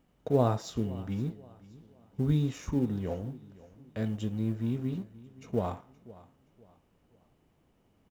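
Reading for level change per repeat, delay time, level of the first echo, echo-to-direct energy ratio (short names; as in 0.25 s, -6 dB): -9.0 dB, 0.522 s, -20.0 dB, -19.5 dB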